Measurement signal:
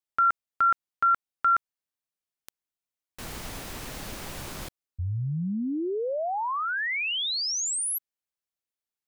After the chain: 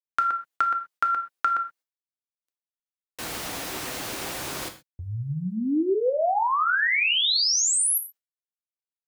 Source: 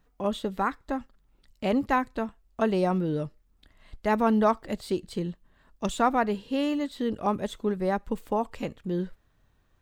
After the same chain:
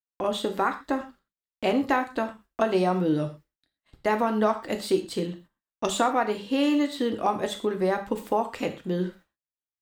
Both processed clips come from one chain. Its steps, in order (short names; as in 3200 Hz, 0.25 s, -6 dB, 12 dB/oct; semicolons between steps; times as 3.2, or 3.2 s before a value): HPF 290 Hz 6 dB/oct; gate -56 dBFS, range -44 dB; compressor, threshold -26 dBFS; non-linear reverb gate 0.15 s falling, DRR 5.5 dB; gain +6 dB